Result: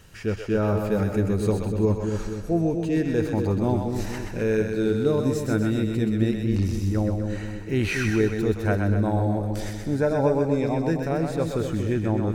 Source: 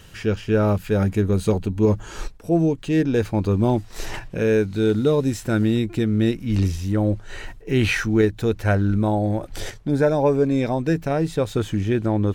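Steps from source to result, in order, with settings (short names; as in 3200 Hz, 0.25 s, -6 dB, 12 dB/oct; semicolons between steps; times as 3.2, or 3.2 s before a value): bell 3200 Hz -5.5 dB 0.43 oct; on a send: split-band echo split 490 Hz, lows 0.237 s, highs 0.127 s, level -4.5 dB; on the sum: gain -4.5 dB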